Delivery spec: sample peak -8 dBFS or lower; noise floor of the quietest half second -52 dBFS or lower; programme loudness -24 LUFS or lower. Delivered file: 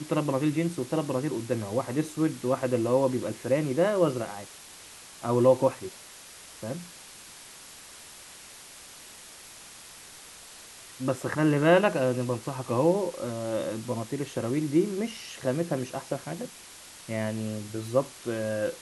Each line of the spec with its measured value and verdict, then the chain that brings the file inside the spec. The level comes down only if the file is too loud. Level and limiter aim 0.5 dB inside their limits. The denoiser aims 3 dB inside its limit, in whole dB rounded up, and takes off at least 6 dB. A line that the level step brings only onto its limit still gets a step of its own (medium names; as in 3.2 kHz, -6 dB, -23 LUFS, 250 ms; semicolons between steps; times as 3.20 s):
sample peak -8.5 dBFS: pass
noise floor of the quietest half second -48 dBFS: fail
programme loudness -28.0 LUFS: pass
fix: noise reduction 7 dB, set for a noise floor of -48 dBFS